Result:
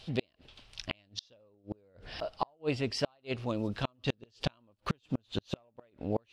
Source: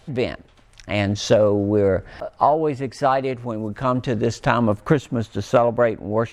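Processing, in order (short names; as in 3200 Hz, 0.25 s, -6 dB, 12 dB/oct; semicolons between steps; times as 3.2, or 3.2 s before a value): band shelf 3700 Hz +12 dB 1.3 oct; flipped gate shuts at -11 dBFS, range -40 dB; gain -6.5 dB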